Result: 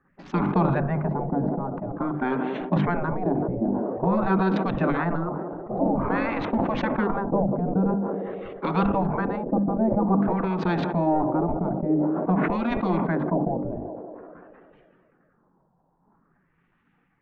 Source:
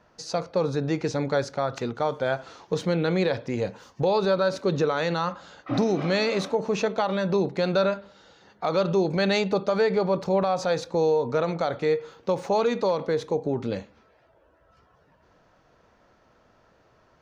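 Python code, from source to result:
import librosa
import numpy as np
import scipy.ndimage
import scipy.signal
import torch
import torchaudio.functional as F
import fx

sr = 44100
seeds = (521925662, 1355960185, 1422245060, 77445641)

y = fx.wiener(x, sr, points=9)
y = scipy.signal.sosfilt(scipy.signal.butter(8, 180.0, 'highpass', fs=sr, output='sos'), y)
y = fx.peak_eq(y, sr, hz=650.0, db=7.0, octaves=2.4)
y = fx.notch(y, sr, hz=1300.0, q=21.0)
y = fx.transient(y, sr, attack_db=3, sustain_db=-7)
y = fx.filter_lfo_lowpass(y, sr, shape='sine', hz=0.49, low_hz=400.0, high_hz=3300.0, q=1.6)
y = fx.spec_gate(y, sr, threshold_db=-15, keep='weak')
y = fx.tilt_eq(y, sr, slope=-4.5)
y = fx.hum_notches(y, sr, base_hz=50, count=6)
y = fx.echo_banded(y, sr, ms=191, feedback_pct=77, hz=470.0, wet_db=-22.5)
y = fx.sustainer(y, sr, db_per_s=24.0)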